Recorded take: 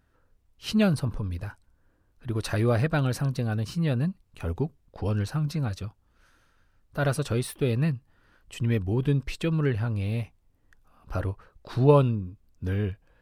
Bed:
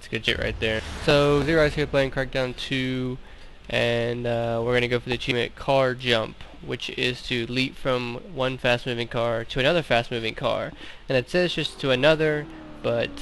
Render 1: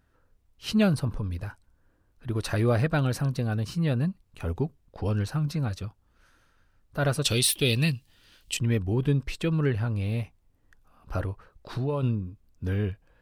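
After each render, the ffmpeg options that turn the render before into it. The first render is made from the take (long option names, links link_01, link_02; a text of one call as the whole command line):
ffmpeg -i in.wav -filter_complex "[0:a]asettb=1/sr,asplit=3[link_01][link_02][link_03];[link_01]atrim=end=7.244[link_04];[link_02]atrim=start=7.24:end=8.57,asetpts=PTS-STARTPTS,afade=type=in:duration=0.004:curve=qsin,afade=type=out:start_time=1.326:duration=0.004:curve=qsin,highshelf=frequency=2100:width_type=q:width=1.5:gain=13.5[link_05];[link_03]atrim=start=8.566[link_06];[link_04][link_05]acrossfade=duration=0.004:curve1=hsin:curve2=qsin[link_07];[link_07][link_06]acrossfade=duration=0.004:curve1=qsin:curve2=hsin,asplit=3[link_08][link_09][link_10];[link_08]afade=type=out:start_time=11.24:duration=0.02[link_11];[link_09]acompressor=threshold=-26dB:ratio=4:attack=3.2:release=140:knee=1:detection=peak,afade=type=in:start_time=11.24:duration=0.02,afade=type=out:start_time=12.02:duration=0.02[link_12];[link_10]afade=type=in:start_time=12.02:duration=0.02[link_13];[link_11][link_12][link_13]amix=inputs=3:normalize=0" out.wav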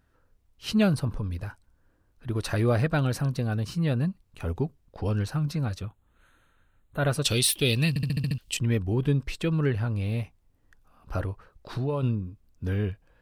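ffmpeg -i in.wav -filter_complex "[0:a]asettb=1/sr,asplit=3[link_01][link_02][link_03];[link_01]atrim=end=5.824[link_04];[link_02]atrim=start=5.82:end=7.11,asetpts=PTS-STARTPTS,afade=type=in:duration=0.004:curve=qsin,afade=type=out:start_time=1.286:duration=0.004:curve=qsin,asuperstop=centerf=5200:order=12:qfactor=2.4[link_05];[link_03]atrim=start=7.106[link_06];[link_04][link_05]acrossfade=duration=0.004:curve1=hsin:curve2=qsin[link_07];[link_07][link_06]acrossfade=duration=0.004:curve1=qsin:curve2=hsin,asplit=8[link_08][link_09][link_10][link_11][link_12][link_13][link_14][link_15];[link_08]atrim=end=7.962[link_16];[link_09]atrim=start=7.888:end=7.962[link_17];[link_10]atrim=start=7.888:end=7.962[link_18];[link_11]atrim=start=7.888:end=7.962[link_19];[link_12]atrim=start=7.888:end=7.962[link_20];[link_13]atrim=start=7.888:end=7.962[link_21];[link_14]atrim=start=7.888:end=7.962[link_22];[link_15]atrim=start=8.378[link_23];[link_16][link_17]acrossfade=duration=0.004:curve1=hsin:curve2=hsin[link_24];[link_24][link_18]acrossfade=duration=0.004:curve1=hsin:curve2=hsin[link_25];[link_25][link_19]acrossfade=duration=0.004:curve1=hsin:curve2=hsin[link_26];[link_26][link_20]acrossfade=duration=0.004:curve1=hsin:curve2=hsin[link_27];[link_27][link_21]acrossfade=duration=0.004:curve1=hsin:curve2=hsin[link_28];[link_28][link_22]acrossfade=duration=0.004:curve1=hsin:curve2=hsin[link_29];[link_29][link_23]acrossfade=duration=0.004:curve1=hsin:curve2=hsin" out.wav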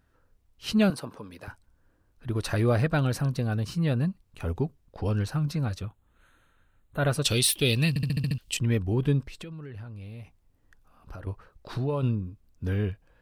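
ffmpeg -i in.wav -filter_complex "[0:a]asettb=1/sr,asplit=3[link_01][link_02][link_03];[link_01]atrim=end=0.904[link_04];[link_02]atrim=start=0.9:end=1.48,asetpts=PTS-STARTPTS,afade=type=in:duration=0.004:curve=qsin,afade=type=out:start_time=0.576:duration=0.004:curve=qsin,highpass=310[link_05];[link_03]atrim=start=1.476[link_06];[link_04][link_05]acrossfade=duration=0.004:curve1=hsin:curve2=qsin[link_07];[link_07][link_06]acrossfade=duration=0.004:curve1=qsin:curve2=hsin,asettb=1/sr,asplit=3[link_08][link_09][link_10];[link_08]atrim=end=9.274[link_11];[link_09]atrim=start=9.27:end=11.27,asetpts=PTS-STARTPTS,afade=type=in:duration=0.004:curve=qsin,afade=type=out:start_time=1.996:duration=0.004:curve=qsin,acompressor=threshold=-37dB:ratio=10:attack=3.2:release=140:knee=1:detection=peak[link_12];[link_10]atrim=start=11.266[link_13];[link_11][link_12]acrossfade=duration=0.004:curve1=hsin:curve2=qsin[link_14];[link_14][link_13]acrossfade=duration=0.004:curve1=qsin:curve2=hsin" out.wav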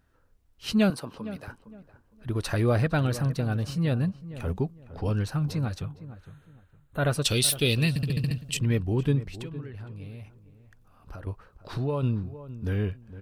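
ffmpeg -i in.wav -filter_complex "[0:a]asplit=2[link_01][link_02];[link_02]adelay=460,lowpass=frequency=1400:poles=1,volume=-14dB,asplit=2[link_03][link_04];[link_04]adelay=460,lowpass=frequency=1400:poles=1,volume=0.27,asplit=2[link_05][link_06];[link_06]adelay=460,lowpass=frequency=1400:poles=1,volume=0.27[link_07];[link_01][link_03][link_05][link_07]amix=inputs=4:normalize=0" out.wav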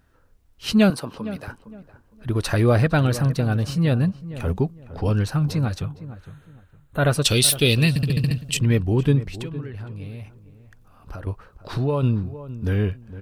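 ffmpeg -i in.wav -af "volume=6dB" out.wav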